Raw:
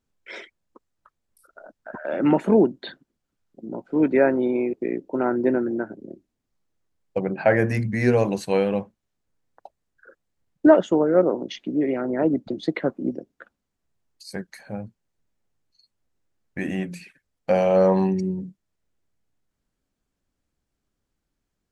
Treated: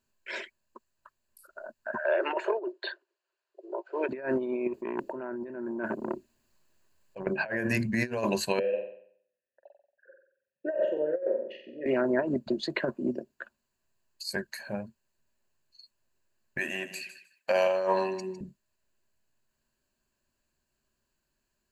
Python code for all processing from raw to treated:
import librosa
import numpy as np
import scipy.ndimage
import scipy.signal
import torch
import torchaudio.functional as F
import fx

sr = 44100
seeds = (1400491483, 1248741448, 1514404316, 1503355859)

y = fx.chain(x, sr, fx.steep_highpass(hz=350.0, slope=72),
    fx.air_absorb(metres=120.0), at=(2.04, 4.09))
y = fx.chain(y, sr, fx.over_compress(threshold_db=-34.0, ratio=-1.0),
    fx.transformer_sat(knee_hz=730.0), at=(4.67, 7.27))
y = fx.chain(y, sr, fx.vowel_filter(vowel='e'),
    fx.bass_treble(bass_db=5, treble_db=-13),
    fx.room_flutter(wall_m=7.9, rt60_s=0.6), at=(8.59, 11.86))
y = fx.chain(y, sr, fx.highpass(hz=800.0, slope=6),
    fx.echo_feedback(ms=155, feedback_pct=18, wet_db=-13.0), at=(16.58, 18.41))
y = fx.ripple_eq(y, sr, per_octave=1.4, db=9)
y = fx.over_compress(y, sr, threshold_db=-22.0, ratio=-0.5)
y = fx.low_shelf(y, sr, hz=460.0, db=-8.5)